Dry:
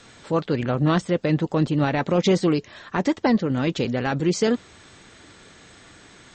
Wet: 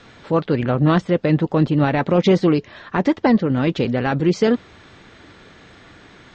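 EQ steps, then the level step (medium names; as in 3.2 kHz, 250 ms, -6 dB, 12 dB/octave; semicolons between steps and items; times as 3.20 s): distance through air 160 m; +4.5 dB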